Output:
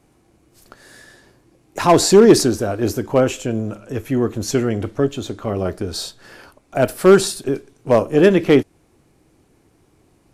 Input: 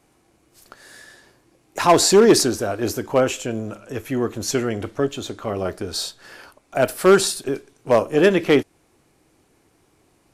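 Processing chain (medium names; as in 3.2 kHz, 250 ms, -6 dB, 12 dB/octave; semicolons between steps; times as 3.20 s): bass shelf 410 Hz +8 dB; trim -1 dB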